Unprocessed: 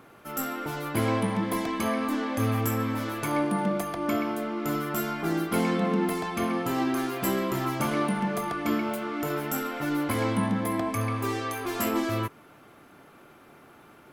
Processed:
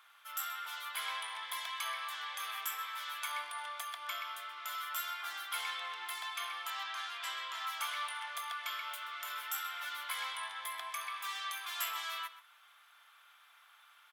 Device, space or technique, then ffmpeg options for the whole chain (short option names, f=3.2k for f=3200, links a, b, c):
headphones lying on a table: -filter_complex "[0:a]highpass=f=1.1k:w=0.5412,highpass=f=1.1k:w=1.3066,equalizer=f=3.4k:t=o:w=0.32:g=10.5,asettb=1/sr,asplit=3[a][b][c];[a]atrim=end=6.704[d];[b]atrim=start=6.7:end=7.67,asetpts=PTS-STARTPTS,afade=t=in:d=0.004:c=qsin,afade=t=out:st=0.966:d=0.004:c=qsin,lowpass=6.5k[e];[c]atrim=start=7.666[f];[d][e]acrossfade=d=0.004:c1=hsin:c2=qsin[g];[g][f]acrossfade=d=0.004:c1=qsin:c2=hsin,asplit=2[h][i];[i]adelay=128.3,volume=-14dB,highshelf=f=4k:g=-2.89[j];[h][j]amix=inputs=2:normalize=0,volume=-5.5dB"